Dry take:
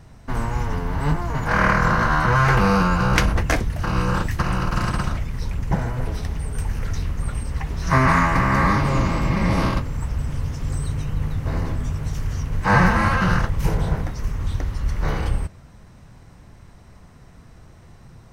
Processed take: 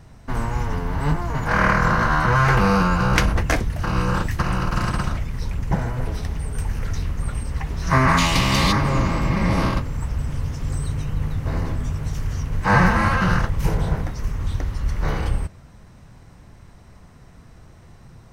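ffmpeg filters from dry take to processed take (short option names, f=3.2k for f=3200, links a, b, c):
-filter_complex "[0:a]asplit=3[a][b][c];[a]afade=t=out:st=8.17:d=0.02[d];[b]highshelf=f=2.3k:t=q:w=3:g=12,afade=t=in:st=8.17:d=0.02,afade=t=out:st=8.71:d=0.02[e];[c]afade=t=in:st=8.71:d=0.02[f];[d][e][f]amix=inputs=3:normalize=0"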